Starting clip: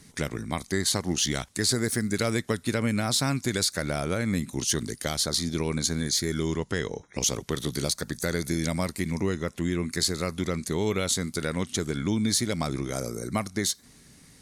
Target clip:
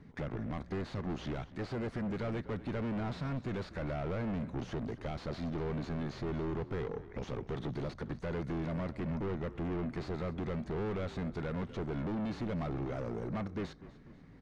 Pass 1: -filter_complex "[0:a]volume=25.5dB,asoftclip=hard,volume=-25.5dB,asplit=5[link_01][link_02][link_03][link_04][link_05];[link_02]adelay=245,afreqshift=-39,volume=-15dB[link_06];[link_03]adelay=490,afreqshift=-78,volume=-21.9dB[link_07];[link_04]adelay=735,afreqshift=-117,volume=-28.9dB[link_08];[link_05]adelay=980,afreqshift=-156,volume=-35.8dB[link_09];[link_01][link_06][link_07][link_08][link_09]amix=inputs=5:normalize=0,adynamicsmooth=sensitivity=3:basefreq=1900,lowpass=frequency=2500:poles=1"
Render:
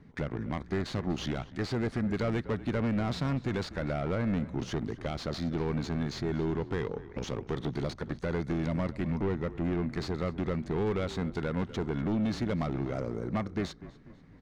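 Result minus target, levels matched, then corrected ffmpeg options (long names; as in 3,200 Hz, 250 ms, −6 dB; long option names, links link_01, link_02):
gain into a clipping stage and back: distortion −5 dB
-filter_complex "[0:a]volume=33.5dB,asoftclip=hard,volume=-33.5dB,asplit=5[link_01][link_02][link_03][link_04][link_05];[link_02]adelay=245,afreqshift=-39,volume=-15dB[link_06];[link_03]adelay=490,afreqshift=-78,volume=-21.9dB[link_07];[link_04]adelay=735,afreqshift=-117,volume=-28.9dB[link_08];[link_05]adelay=980,afreqshift=-156,volume=-35.8dB[link_09];[link_01][link_06][link_07][link_08][link_09]amix=inputs=5:normalize=0,adynamicsmooth=sensitivity=3:basefreq=1900,lowpass=frequency=2500:poles=1"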